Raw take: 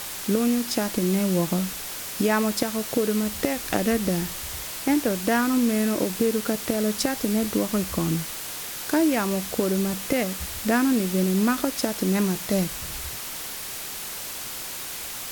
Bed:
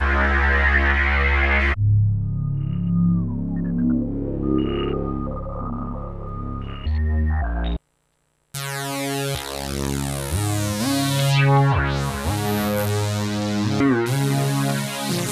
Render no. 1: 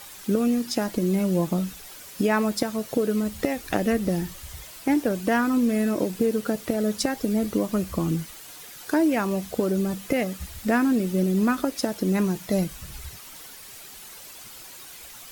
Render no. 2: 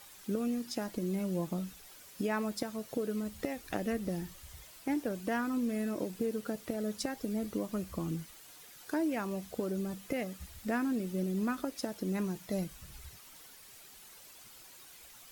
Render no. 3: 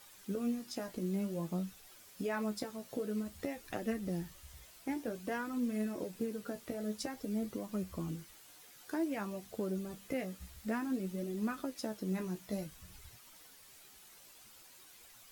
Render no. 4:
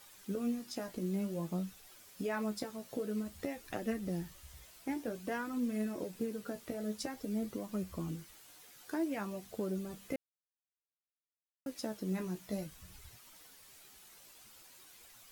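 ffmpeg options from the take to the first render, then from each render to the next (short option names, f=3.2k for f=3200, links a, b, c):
-af "afftdn=nr=11:nf=-34"
-af "volume=-11dB"
-af "flanger=delay=7.8:depth=9.5:regen=33:speed=0.53:shape=triangular,acrusher=bits=8:mode=log:mix=0:aa=0.000001"
-filter_complex "[0:a]asplit=3[a][b][c];[a]atrim=end=10.16,asetpts=PTS-STARTPTS,afade=t=out:st=10.156:d=0.004:c=hsin[d];[b]atrim=start=10.16:end=11.66,asetpts=PTS-STARTPTS,volume=0[e];[c]atrim=start=11.66,asetpts=PTS-STARTPTS,afade=t=in:d=0.004:c=hsin[f];[d][e][f]concat=n=3:v=0:a=1"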